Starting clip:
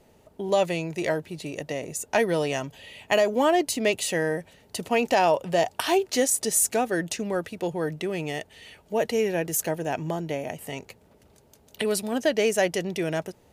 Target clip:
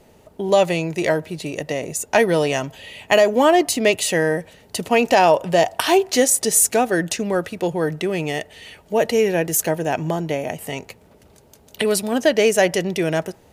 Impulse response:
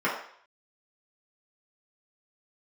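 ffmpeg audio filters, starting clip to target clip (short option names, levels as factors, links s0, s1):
-filter_complex "[0:a]asplit=2[s0][s1];[1:a]atrim=start_sample=2205[s2];[s1][s2]afir=irnorm=-1:irlink=0,volume=0.0188[s3];[s0][s3]amix=inputs=2:normalize=0,volume=2.11"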